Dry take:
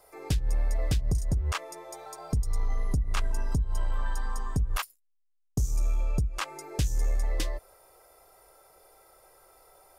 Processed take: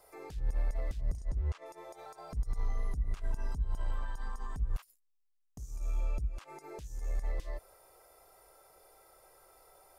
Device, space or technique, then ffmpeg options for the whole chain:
de-esser from a sidechain: -filter_complex "[0:a]asplit=2[a][b];[b]highpass=f=6.4k:p=1,apad=whole_len=440463[c];[a][c]sidechaincompress=threshold=-55dB:ratio=12:attack=2.5:release=51,asettb=1/sr,asplit=3[d][e][f];[d]atrim=end=1.174[g];[e]atrim=start=1.17:end=1.66,asetpts=PTS-STARTPTS,afade=t=in:d=0.004:c=qsin,afade=t=out:st=0.486:d=0.004:c=qsin,lowpass=7.8k[h];[f]atrim=start=1.656[i];[g][h]acrossfade=d=0.004:c1=hsin:c2=qsin[j];[j][i]acrossfade=d=0.004:c1=qsin:c2=hsin,volume=-3dB"

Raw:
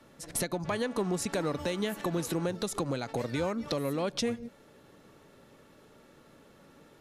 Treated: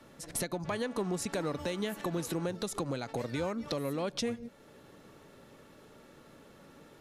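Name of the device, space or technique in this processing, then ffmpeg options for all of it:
parallel compression: -filter_complex "[0:a]asplit=2[a][b];[b]acompressor=threshold=-49dB:ratio=6,volume=-2dB[c];[a][c]amix=inputs=2:normalize=0,volume=-3.5dB"

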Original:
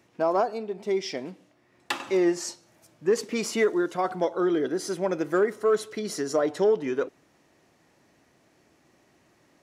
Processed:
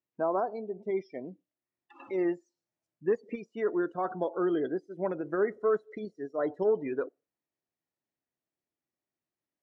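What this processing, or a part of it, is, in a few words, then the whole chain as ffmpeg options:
de-esser from a sidechain: -filter_complex "[0:a]asettb=1/sr,asplit=3[a][b][c];[a]atrim=end=3.444[d];[b]atrim=start=3.44:end=4.43,asetpts=PTS-STARTPTS,afade=t=in:d=0.004:c=qsin,afade=t=out:st=0.986:d=0.004:c=qsin,bandreject=f=2.1k:w=6.8[e];[c]atrim=start=4.426[f];[d][e]acrossfade=d=0.004:c1=hsin:c2=qsin[g];[g][f]acrossfade=d=0.004:c1=qsin:c2=hsin,asplit=2[h][i];[i]highpass=6.4k,apad=whole_len=424320[j];[h][j]sidechaincompress=threshold=-50dB:ratio=6:attack=0.63:release=69,afftdn=nr=29:nf=-38,lowpass=8.5k,volume=-4dB"

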